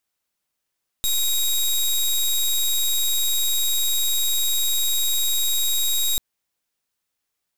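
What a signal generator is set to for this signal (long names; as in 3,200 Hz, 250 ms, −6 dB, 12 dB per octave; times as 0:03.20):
pulse wave 3,790 Hz, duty 17% −20.5 dBFS 5.14 s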